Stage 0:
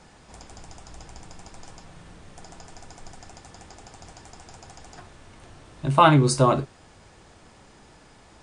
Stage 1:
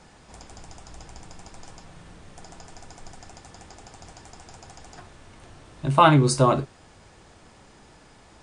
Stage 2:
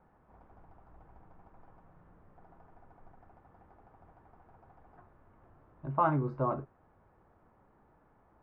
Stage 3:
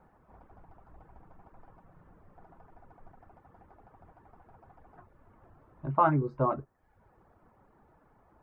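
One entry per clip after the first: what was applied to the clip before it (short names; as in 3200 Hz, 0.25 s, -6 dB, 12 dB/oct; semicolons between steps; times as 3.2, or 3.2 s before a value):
nothing audible
ladder low-pass 1600 Hz, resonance 25%; gain -7.5 dB
reverb removal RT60 0.66 s; gain +4 dB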